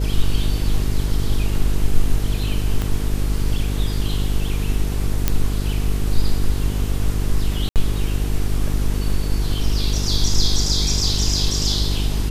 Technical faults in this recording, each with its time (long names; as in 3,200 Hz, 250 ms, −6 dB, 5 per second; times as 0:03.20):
mains buzz 50 Hz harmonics 9 −22 dBFS
0:02.82: click −10 dBFS
0:05.28: click −2 dBFS
0:07.69–0:07.76: drop-out 68 ms